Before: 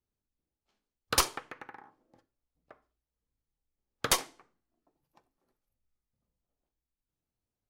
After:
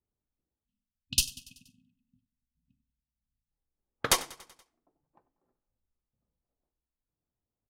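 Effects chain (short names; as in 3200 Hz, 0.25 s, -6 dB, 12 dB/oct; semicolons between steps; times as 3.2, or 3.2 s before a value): spectral delete 0.64–3.51, 260–2500 Hz; added harmonics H 7 -31 dB, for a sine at -12.5 dBFS; low-pass opened by the level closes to 1200 Hz, open at -32.5 dBFS; on a send: feedback echo 95 ms, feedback 59%, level -20 dB; on the sum: gain +2 dB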